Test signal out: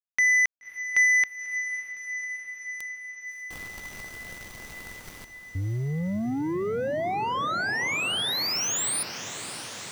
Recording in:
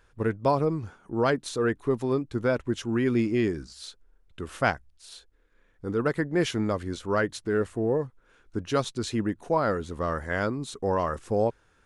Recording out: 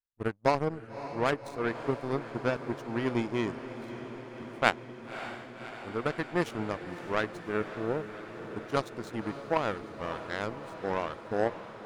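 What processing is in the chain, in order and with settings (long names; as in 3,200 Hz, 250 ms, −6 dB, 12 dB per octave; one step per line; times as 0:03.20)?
power curve on the samples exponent 2
feedback delay with all-pass diffusion 577 ms, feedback 76%, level −12 dB
level +5 dB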